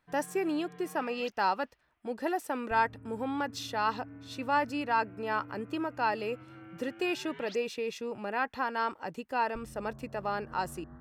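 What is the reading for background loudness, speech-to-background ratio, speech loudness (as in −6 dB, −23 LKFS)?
−50.0 LKFS, 17.0 dB, −33.0 LKFS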